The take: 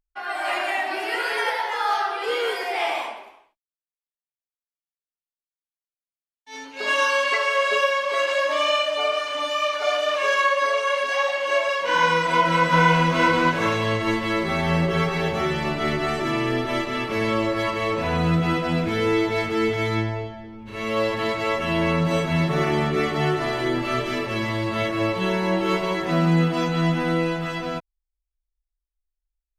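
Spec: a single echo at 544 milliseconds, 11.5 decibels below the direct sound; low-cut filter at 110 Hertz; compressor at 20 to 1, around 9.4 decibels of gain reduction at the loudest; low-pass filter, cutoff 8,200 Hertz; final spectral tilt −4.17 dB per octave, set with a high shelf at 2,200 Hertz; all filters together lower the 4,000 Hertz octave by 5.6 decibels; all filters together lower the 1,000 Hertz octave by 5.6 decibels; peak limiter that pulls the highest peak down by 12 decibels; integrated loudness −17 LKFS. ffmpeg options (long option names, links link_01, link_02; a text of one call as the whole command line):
ffmpeg -i in.wav -af "highpass=110,lowpass=8200,equalizer=frequency=1000:width_type=o:gain=-5.5,highshelf=frequency=2200:gain=-4.5,equalizer=frequency=4000:width_type=o:gain=-3,acompressor=threshold=-25dB:ratio=20,alimiter=level_in=5.5dB:limit=-24dB:level=0:latency=1,volume=-5.5dB,aecho=1:1:544:0.266,volume=20dB" out.wav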